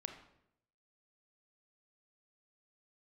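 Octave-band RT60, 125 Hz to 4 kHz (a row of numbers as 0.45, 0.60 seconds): 0.95, 0.85, 0.85, 0.70, 0.65, 0.60 seconds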